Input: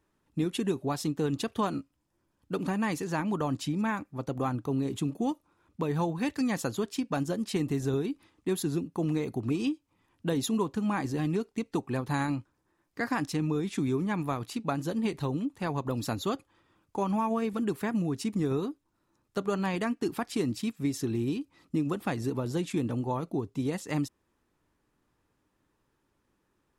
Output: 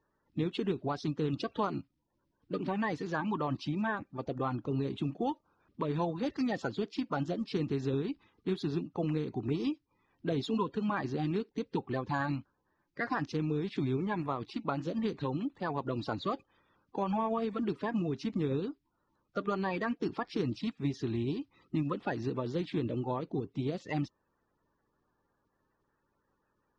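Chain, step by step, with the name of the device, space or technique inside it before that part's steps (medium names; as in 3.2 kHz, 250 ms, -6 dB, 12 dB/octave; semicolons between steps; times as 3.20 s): clip after many re-uploads (low-pass 4.8 kHz 24 dB/octave; coarse spectral quantiser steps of 30 dB); trim -2.5 dB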